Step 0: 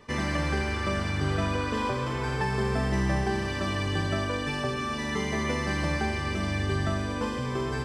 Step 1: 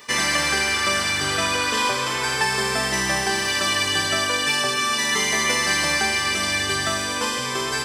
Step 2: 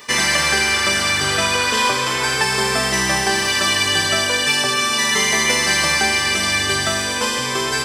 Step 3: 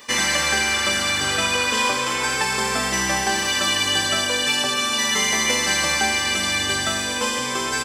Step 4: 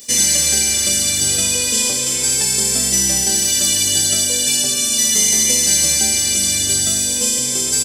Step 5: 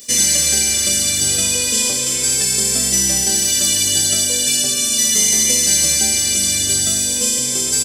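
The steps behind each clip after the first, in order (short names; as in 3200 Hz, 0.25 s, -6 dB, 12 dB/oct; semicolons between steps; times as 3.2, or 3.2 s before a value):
tilt +4.5 dB/oct; gain +7.5 dB
de-hum 293.6 Hz, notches 6; gain +4.5 dB
comb 3.7 ms, depth 37%; gain -3.5 dB
EQ curve 150 Hz 0 dB, 260 Hz -3 dB, 570 Hz -7 dB, 1100 Hz -22 dB, 7700 Hz +10 dB; gain +4.5 dB
Butterworth band-stop 880 Hz, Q 7.2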